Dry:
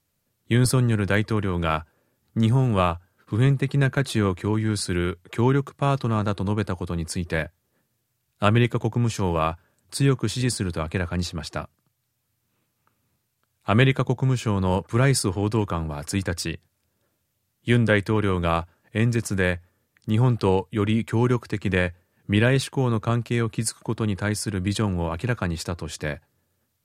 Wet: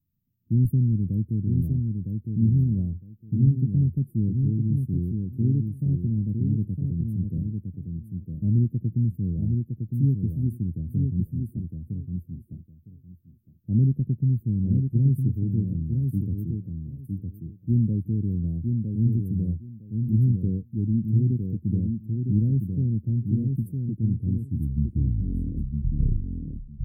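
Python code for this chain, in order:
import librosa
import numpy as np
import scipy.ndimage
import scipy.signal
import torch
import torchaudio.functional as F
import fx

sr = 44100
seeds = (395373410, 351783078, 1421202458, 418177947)

y = fx.tape_stop_end(x, sr, length_s=2.86)
y = scipy.signal.sosfilt(scipy.signal.cheby2(4, 70, [950.0, 6200.0], 'bandstop', fs=sr, output='sos'), y)
y = fx.echo_feedback(y, sr, ms=959, feedback_pct=17, wet_db=-4.5)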